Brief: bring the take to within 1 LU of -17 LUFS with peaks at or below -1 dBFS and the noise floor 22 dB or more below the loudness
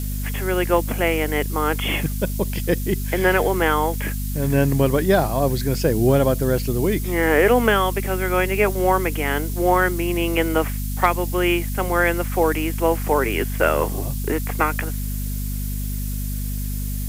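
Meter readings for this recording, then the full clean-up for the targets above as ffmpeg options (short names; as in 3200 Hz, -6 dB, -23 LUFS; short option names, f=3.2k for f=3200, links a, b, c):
hum 50 Hz; harmonics up to 250 Hz; hum level -23 dBFS; noise floor -26 dBFS; noise floor target -43 dBFS; loudness -21.0 LUFS; peak -2.5 dBFS; loudness target -17.0 LUFS
-> -af "bandreject=f=50:t=h:w=4,bandreject=f=100:t=h:w=4,bandreject=f=150:t=h:w=4,bandreject=f=200:t=h:w=4,bandreject=f=250:t=h:w=4"
-af "afftdn=nr=17:nf=-26"
-af "volume=4dB,alimiter=limit=-1dB:level=0:latency=1"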